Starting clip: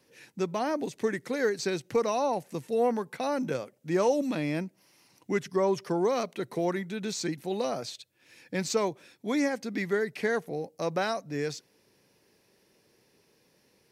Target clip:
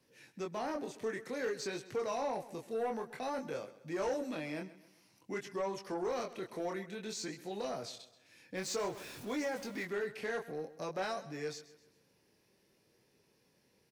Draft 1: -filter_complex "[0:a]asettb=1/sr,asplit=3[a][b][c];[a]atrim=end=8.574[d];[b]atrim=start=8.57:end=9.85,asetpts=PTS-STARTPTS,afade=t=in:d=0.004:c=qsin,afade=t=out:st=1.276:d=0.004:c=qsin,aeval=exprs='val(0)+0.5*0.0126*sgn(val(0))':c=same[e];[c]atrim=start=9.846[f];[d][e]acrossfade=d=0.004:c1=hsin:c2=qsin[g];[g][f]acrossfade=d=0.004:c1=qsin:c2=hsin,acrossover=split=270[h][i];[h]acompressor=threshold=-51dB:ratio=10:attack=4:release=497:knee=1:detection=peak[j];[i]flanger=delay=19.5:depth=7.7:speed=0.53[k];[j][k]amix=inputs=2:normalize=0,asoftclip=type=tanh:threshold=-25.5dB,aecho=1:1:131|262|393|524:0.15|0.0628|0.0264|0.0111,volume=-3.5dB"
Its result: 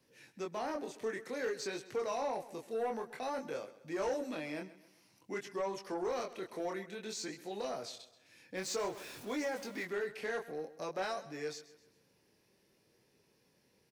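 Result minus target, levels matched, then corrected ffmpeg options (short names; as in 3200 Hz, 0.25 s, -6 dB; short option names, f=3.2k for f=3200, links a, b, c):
compressor: peak gain reduction +7 dB
-filter_complex "[0:a]asettb=1/sr,asplit=3[a][b][c];[a]atrim=end=8.574[d];[b]atrim=start=8.57:end=9.85,asetpts=PTS-STARTPTS,afade=t=in:d=0.004:c=qsin,afade=t=out:st=1.276:d=0.004:c=qsin,aeval=exprs='val(0)+0.5*0.0126*sgn(val(0))':c=same[e];[c]atrim=start=9.846[f];[d][e]acrossfade=d=0.004:c1=hsin:c2=qsin[g];[g][f]acrossfade=d=0.004:c1=qsin:c2=hsin,acrossover=split=270[h][i];[h]acompressor=threshold=-43.5dB:ratio=10:attack=4:release=497:knee=1:detection=peak[j];[i]flanger=delay=19.5:depth=7.7:speed=0.53[k];[j][k]amix=inputs=2:normalize=0,asoftclip=type=tanh:threshold=-25.5dB,aecho=1:1:131|262|393|524:0.15|0.0628|0.0264|0.0111,volume=-3.5dB"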